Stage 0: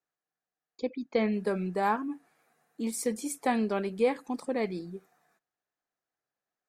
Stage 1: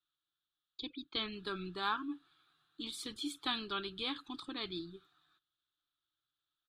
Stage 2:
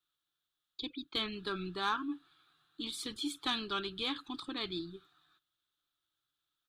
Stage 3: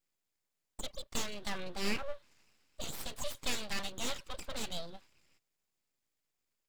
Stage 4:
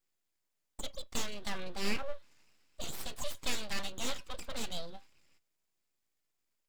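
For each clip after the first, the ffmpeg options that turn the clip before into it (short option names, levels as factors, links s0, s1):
-af "firequalizer=gain_entry='entry(120,0);entry(220,-22);entry(310,-3);entry(500,-28);entry(1300,1);entry(2000,-15);entry(3500,14);entry(5500,-14);entry(15000,-19)':delay=0.05:min_phase=1,volume=1.33"
-af "asoftclip=type=tanh:threshold=0.0562,volume=1.41"
-af "aeval=exprs='abs(val(0))':c=same,volume=1.26"
-af "flanger=delay=2.6:depth=1.7:regen=87:speed=0.33:shape=triangular,volume=1.68"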